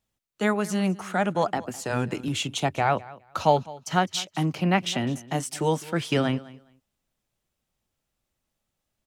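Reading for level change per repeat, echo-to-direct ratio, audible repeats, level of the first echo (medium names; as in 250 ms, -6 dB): -15.0 dB, -20.0 dB, 2, -20.0 dB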